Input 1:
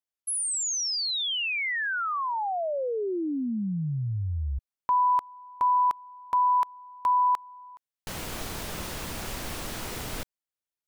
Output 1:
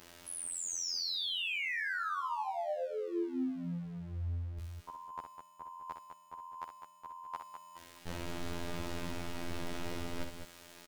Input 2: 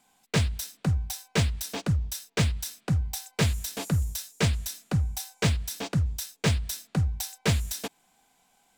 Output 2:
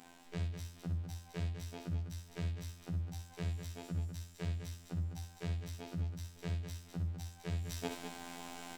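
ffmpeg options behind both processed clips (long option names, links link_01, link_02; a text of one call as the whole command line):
ffmpeg -i in.wav -filter_complex "[0:a]aeval=exprs='val(0)+0.5*0.0168*sgn(val(0))':channel_layout=same,lowpass=frequency=1800:poles=1,equalizer=frequency=1100:width=0.78:gain=-4,areverse,acompressor=threshold=-34dB:ratio=16:attack=33:release=854:knee=1:detection=rms,areverse,afftfilt=real='hypot(re,im)*cos(PI*b)':imag='0':win_size=2048:overlap=0.75,asplit=2[link_01][link_02];[link_02]aecho=0:1:61.22|204.1:0.447|0.398[link_03];[link_01][link_03]amix=inputs=2:normalize=0,volume=2dB" out.wav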